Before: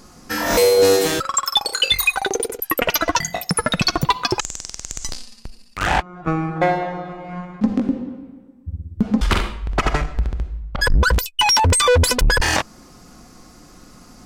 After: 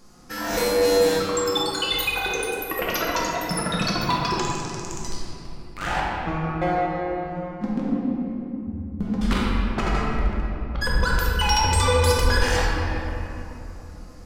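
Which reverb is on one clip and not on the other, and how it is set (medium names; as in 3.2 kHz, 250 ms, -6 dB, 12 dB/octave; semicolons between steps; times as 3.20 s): simulated room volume 160 m³, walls hard, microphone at 0.75 m; trim -10 dB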